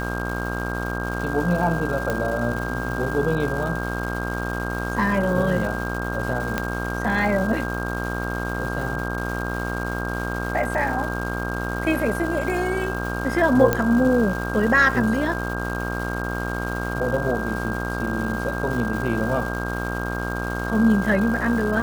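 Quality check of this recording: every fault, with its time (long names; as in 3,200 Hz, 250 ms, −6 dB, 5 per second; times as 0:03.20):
mains buzz 60 Hz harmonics 24 −28 dBFS
surface crackle 490 per second −30 dBFS
whistle 1,600 Hz −30 dBFS
0:02.10: click
0:06.58: click −8 dBFS
0:13.73: click −6 dBFS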